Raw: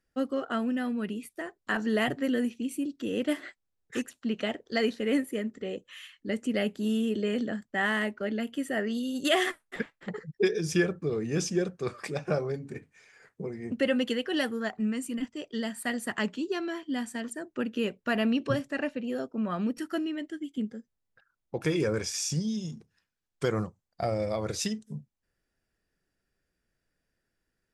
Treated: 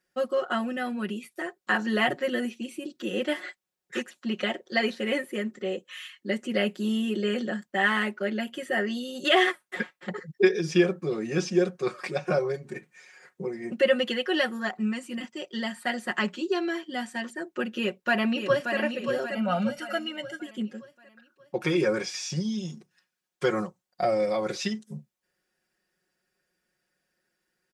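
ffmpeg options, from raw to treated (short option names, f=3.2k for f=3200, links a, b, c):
-filter_complex "[0:a]asplit=2[a][b];[b]afade=t=in:st=17.77:d=0.01,afade=t=out:st=18.76:d=0.01,aecho=0:1:580|1160|1740|2320|2900:0.473151|0.212918|0.0958131|0.0431159|0.0194022[c];[a][c]amix=inputs=2:normalize=0,asettb=1/sr,asplit=3[d][e][f];[d]atrim=end=19.314[g];[e]atrim=start=19.31:end=20.42,asetpts=PTS-STARTPTS,afade=t=in:d=0.004:c=qsin,afade=t=out:st=1.106:d=0.004:c=qsin,aecho=1:1:1.4:0.82,atrim=end_sample=48951[h];[f]atrim=start=20.416[i];[g][h]acrossfade=d=0.004:c1=hsin:c2=qsin[j];[j][i]acrossfade=d=0.004:c1=qsin:c2=hsin,acrossover=split=4800[k][l];[l]acompressor=threshold=-56dB:ratio=4:attack=1:release=60[m];[k][m]amix=inputs=2:normalize=0,highpass=f=350:p=1,aecho=1:1:5.5:0.89,volume=3dB"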